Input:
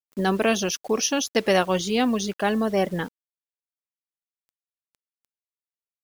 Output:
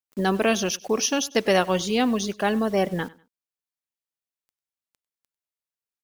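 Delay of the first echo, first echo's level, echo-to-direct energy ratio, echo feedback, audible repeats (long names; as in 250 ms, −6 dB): 98 ms, −22.0 dB, −21.5 dB, 29%, 2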